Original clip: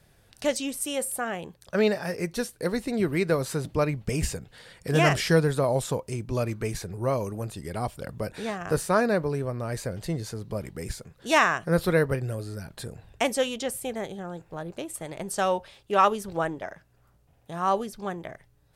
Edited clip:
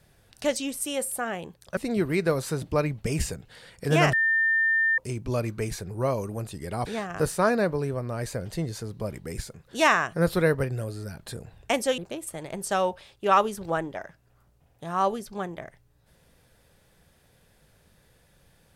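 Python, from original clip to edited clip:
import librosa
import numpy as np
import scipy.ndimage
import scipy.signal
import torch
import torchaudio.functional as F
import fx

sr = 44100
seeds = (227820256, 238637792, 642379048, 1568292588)

y = fx.edit(x, sr, fx.cut(start_s=1.77, length_s=1.03),
    fx.bleep(start_s=5.16, length_s=0.85, hz=1800.0, db=-19.5),
    fx.cut(start_s=7.89, length_s=0.48),
    fx.cut(start_s=13.49, length_s=1.16), tone=tone)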